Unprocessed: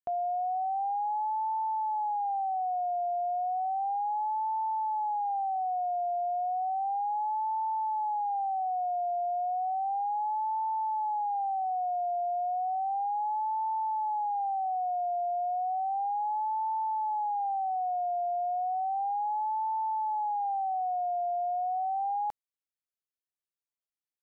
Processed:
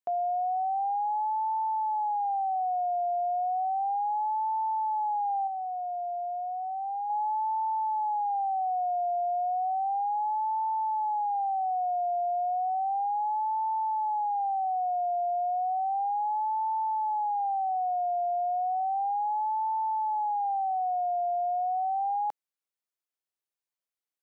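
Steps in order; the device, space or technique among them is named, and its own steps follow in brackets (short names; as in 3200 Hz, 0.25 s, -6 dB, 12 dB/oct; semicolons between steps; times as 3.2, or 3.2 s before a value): 5.47–7.1 bell 740 Hz -5 dB 0.44 oct; filter by subtraction (in parallel: LPF 510 Hz + phase invert)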